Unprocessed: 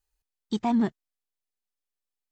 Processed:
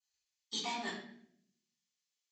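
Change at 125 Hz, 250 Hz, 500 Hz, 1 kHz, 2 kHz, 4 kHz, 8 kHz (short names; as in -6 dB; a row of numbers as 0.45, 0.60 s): -19.5 dB, -22.0 dB, -12.5 dB, -9.0 dB, +2.0 dB, +5.5 dB, n/a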